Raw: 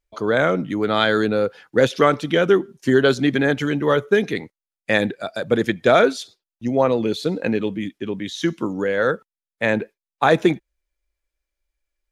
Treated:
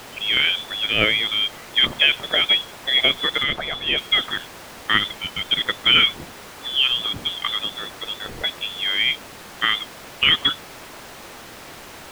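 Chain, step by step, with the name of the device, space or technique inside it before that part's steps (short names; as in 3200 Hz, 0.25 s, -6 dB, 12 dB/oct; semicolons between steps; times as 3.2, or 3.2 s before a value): scrambled radio voice (BPF 320–3200 Hz; inverted band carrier 3700 Hz; white noise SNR 14 dB); 3.43–3.98 tilt -2 dB/oct; LPF 1200 Hz 6 dB/oct; low shelf 120 Hz -4.5 dB; gain +7.5 dB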